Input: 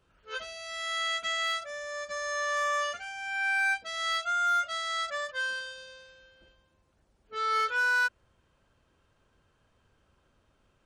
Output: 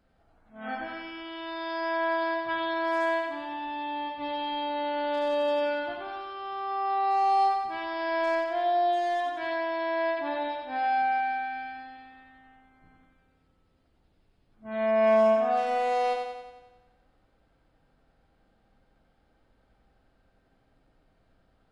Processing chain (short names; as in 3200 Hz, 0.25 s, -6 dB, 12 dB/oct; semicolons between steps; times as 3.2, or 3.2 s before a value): flutter echo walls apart 7.8 m, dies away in 0.57 s; speed mistake 15 ips tape played at 7.5 ips; gain +1 dB